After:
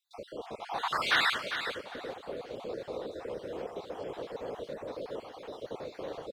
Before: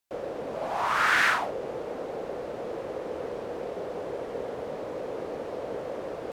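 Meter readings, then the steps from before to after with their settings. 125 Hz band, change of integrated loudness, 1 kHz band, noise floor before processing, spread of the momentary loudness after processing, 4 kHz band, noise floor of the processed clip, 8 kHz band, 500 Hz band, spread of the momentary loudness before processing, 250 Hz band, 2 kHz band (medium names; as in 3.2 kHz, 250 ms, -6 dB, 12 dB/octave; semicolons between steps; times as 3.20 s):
-6.0 dB, -4.5 dB, -6.0 dB, -38 dBFS, 15 LU, +3.0 dB, -53 dBFS, -6.0 dB, -6.0 dB, 13 LU, -5.5 dB, -5.0 dB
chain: random holes in the spectrogram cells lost 48%; peaking EQ 3.8 kHz +11.5 dB 0.55 oct; on a send: feedback delay 401 ms, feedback 23%, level -9 dB; on the sum: trim -3.5 dB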